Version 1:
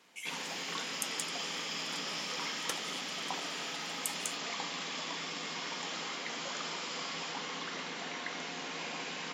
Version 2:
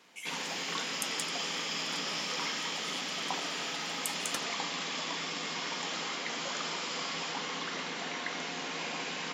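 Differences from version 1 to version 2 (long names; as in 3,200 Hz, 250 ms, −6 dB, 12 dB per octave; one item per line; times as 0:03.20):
first sound +3.0 dB
second sound: entry +1.65 s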